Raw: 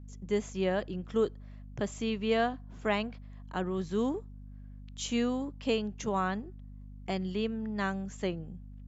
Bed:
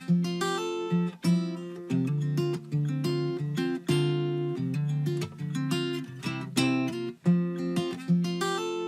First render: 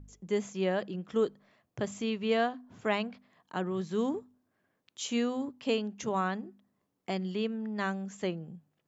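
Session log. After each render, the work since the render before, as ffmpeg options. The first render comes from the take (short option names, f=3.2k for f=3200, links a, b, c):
-af "bandreject=f=50:t=h:w=4,bandreject=f=100:t=h:w=4,bandreject=f=150:t=h:w=4,bandreject=f=200:t=h:w=4,bandreject=f=250:t=h:w=4"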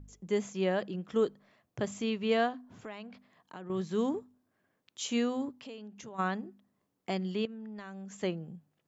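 -filter_complex "[0:a]asettb=1/sr,asplit=3[a][b][c];[a]atrim=end=2.734[d];[b]atrim=start=2.73:end=3.7,asetpts=PTS-STARTPTS,afade=t=in:d=0.004:c=qsin,afade=t=out:st=0.966:d=0.004:c=qsin,acompressor=threshold=-44dB:ratio=3:attack=3.2:release=140:knee=1:detection=peak[e];[c]atrim=start=3.696[f];[d][e]acrossfade=d=0.004:c1=hsin:c2=qsin[g];[g][f]acrossfade=d=0.004:c1=qsin:c2=hsin,asplit=3[h][i][j];[h]afade=t=out:st=5.6:d=0.02[k];[i]acompressor=threshold=-47dB:ratio=3:attack=3.2:release=140:knee=1:detection=peak,afade=t=in:st=5.6:d=0.02,afade=t=out:st=6.18:d=0.02[l];[j]afade=t=in:st=6.18:d=0.02[m];[k][l][m]amix=inputs=3:normalize=0,asettb=1/sr,asplit=3[n][o][p];[n]atrim=end=7.454[q];[o]atrim=start=7.45:end=8.17,asetpts=PTS-STARTPTS,afade=t=in:d=0.004:c=qsin,afade=t=out:st=0.716:d=0.004:c=qsin,acompressor=threshold=-42dB:ratio=5:attack=3.2:release=140:knee=1:detection=peak[r];[p]atrim=start=8.166[s];[q][r]acrossfade=d=0.004:c1=hsin:c2=qsin[t];[t][s]acrossfade=d=0.004:c1=qsin:c2=hsin"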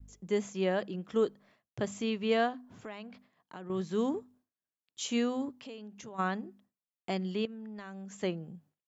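-af "adynamicequalizer=threshold=0.00282:dfrequency=150:dqfactor=3:tfrequency=150:tqfactor=3:attack=5:release=100:ratio=0.375:range=1.5:mode=cutabove:tftype=bell,agate=range=-33dB:threshold=-58dB:ratio=3:detection=peak"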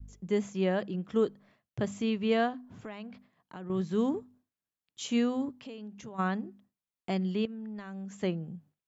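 -af "bass=f=250:g=6,treble=f=4k:g=-3"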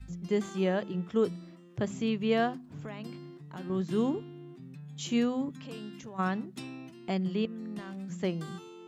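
-filter_complex "[1:a]volume=-17dB[a];[0:a][a]amix=inputs=2:normalize=0"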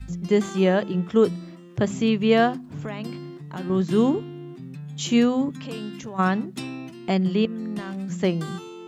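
-af "volume=9dB"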